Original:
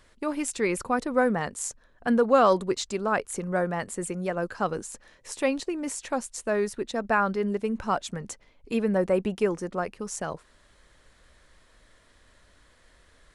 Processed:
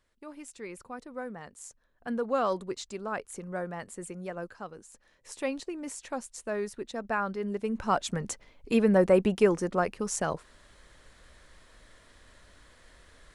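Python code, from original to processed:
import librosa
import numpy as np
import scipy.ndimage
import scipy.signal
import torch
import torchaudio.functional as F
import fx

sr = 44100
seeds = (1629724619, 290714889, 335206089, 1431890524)

y = fx.gain(x, sr, db=fx.line((1.35, -15.5), (2.32, -8.5), (4.42, -8.5), (4.72, -16.0), (5.32, -6.5), (7.39, -6.5), (8.13, 2.5)))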